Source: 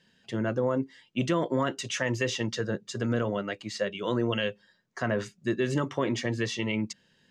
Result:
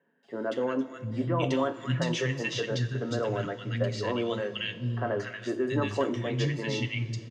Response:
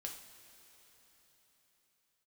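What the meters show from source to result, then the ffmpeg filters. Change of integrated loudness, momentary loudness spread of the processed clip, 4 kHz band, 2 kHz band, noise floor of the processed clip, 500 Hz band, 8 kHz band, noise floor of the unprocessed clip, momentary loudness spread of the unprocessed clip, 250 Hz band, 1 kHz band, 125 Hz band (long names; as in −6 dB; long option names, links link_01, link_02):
−0.5 dB, 5 LU, −0.5 dB, −1.5 dB, −46 dBFS, 0.0 dB, −5.0 dB, −67 dBFS, 6 LU, −1.5 dB, 0.0 dB, +3.0 dB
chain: -filter_complex "[0:a]acrossover=split=5800[link_01][link_02];[link_02]acompressor=threshold=-58dB:ratio=4:attack=1:release=60[link_03];[link_01][link_03]amix=inputs=2:normalize=0,acrossover=split=220|1600[link_04][link_05][link_06];[link_06]adelay=230[link_07];[link_04]adelay=700[link_08];[link_08][link_05][link_07]amix=inputs=3:normalize=0,asplit=2[link_09][link_10];[1:a]atrim=start_sample=2205,lowshelf=frequency=210:gain=8,adelay=7[link_11];[link_10][link_11]afir=irnorm=-1:irlink=0,volume=-4dB[link_12];[link_09][link_12]amix=inputs=2:normalize=0"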